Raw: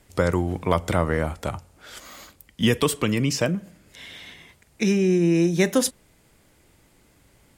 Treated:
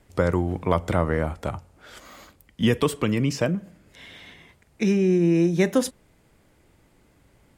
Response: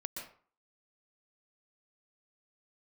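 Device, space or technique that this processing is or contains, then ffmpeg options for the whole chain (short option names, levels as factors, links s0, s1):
behind a face mask: -af "highshelf=f=2800:g=-8"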